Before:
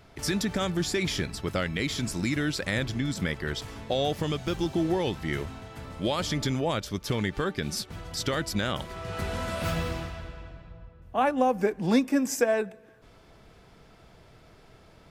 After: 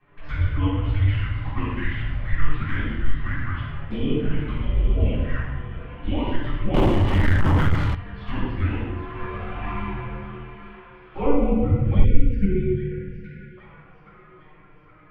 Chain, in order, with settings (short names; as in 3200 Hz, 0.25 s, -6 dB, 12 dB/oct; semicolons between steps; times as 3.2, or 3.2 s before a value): mistuned SSB -290 Hz 190–2900 Hz; thinning echo 0.816 s, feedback 63%, high-pass 710 Hz, level -11.5 dB; envelope flanger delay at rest 7.6 ms, full sweep at -24.5 dBFS; 10.52–11.2 doubler 43 ms -3.5 dB; shoebox room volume 610 m³, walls mixed, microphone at 8.6 m; 6.74–7.95 sample leveller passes 3; 12.04–13.58 spectral delete 540–1400 Hz; dynamic EQ 170 Hz, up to -5 dB, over -26 dBFS, Q 2.6; gain -10.5 dB